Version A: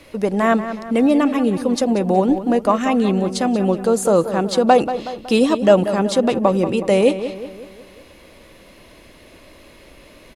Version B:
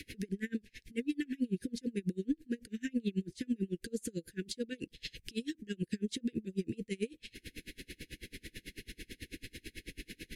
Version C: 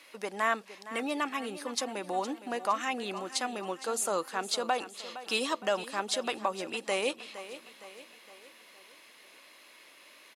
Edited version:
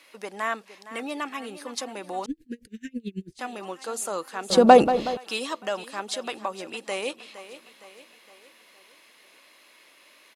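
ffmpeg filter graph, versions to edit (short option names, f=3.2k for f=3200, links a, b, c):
-filter_complex "[2:a]asplit=3[a][b][c];[a]atrim=end=2.262[d];[1:a]atrim=start=2.258:end=3.392[e];[b]atrim=start=3.388:end=4.502[f];[0:a]atrim=start=4.498:end=5.172[g];[c]atrim=start=5.168[h];[d][e]acrossfade=d=0.004:c1=hsin:c2=hsin[i];[i][f]acrossfade=d=0.004:c1=hsin:c2=hsin[j];[j][g]acrossfade=d=0.004:c1=hsin:c2=hsin[k];[k][h]acrossfade=d=0.004:c1=hsin:c2=hsin"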